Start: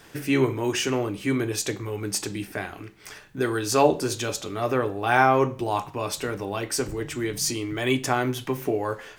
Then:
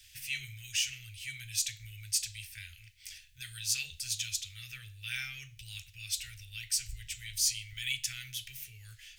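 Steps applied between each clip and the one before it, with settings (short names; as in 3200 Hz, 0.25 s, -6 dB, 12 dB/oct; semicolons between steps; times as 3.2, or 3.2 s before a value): inverse Chebyshev band-stop 190–1100 Hz, stop band 50 dB; gain -2 dB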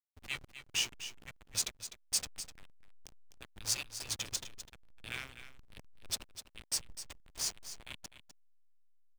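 ending faded out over 2.80 s; backlash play -29.5 dBFS; echo 0.252 s -11.5 dB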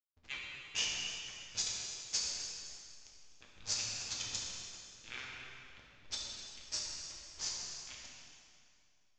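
power-law curve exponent 1.4; plate-style reverb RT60 2.5 s, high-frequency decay 0.85×, DRR -4 dB; downsampling 16000 Hz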